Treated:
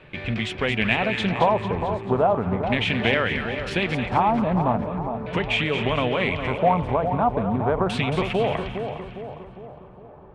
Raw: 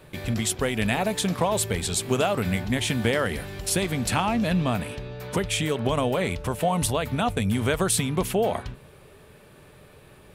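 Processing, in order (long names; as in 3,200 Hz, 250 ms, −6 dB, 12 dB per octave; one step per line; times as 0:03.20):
mains-hum notches 50/100 Hz
auto-filter low-pass square 0.38 Hz 920–2,600 Hz
echo with a time of its own for lows and highs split 1,100 Hz, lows 407 ms, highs 223 ms, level −7.5 dB
highs frequency-modulated by the lows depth 0.16 ms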